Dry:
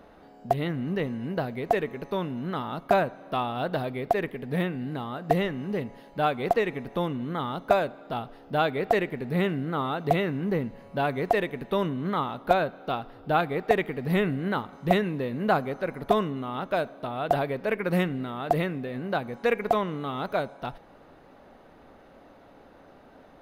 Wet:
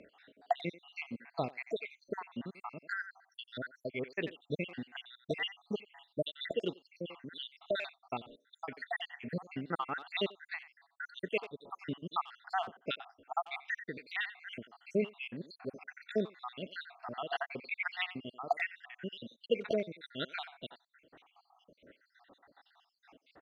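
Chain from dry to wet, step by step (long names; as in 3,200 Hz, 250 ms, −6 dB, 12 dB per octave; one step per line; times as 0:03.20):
time-frequency cells dropped at random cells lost 80%
high-frequency loss of the air 100 metres
far-end echo of a speakerphone 90 ms, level −16 dB
amplitude tremolo 4.2 Hz, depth 53%
meter weighting curve D
level −2 dB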